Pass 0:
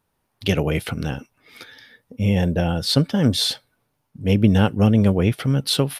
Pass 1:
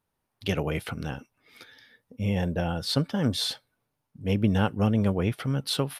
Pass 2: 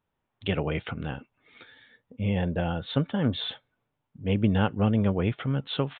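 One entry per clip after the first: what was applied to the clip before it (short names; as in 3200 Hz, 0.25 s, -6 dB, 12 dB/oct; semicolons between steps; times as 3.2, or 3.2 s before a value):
dynamic EQ 1100 Hz, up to +5 dB, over -37 dBFS, Q 1; gain -8 dB
downsampling 8000 Hz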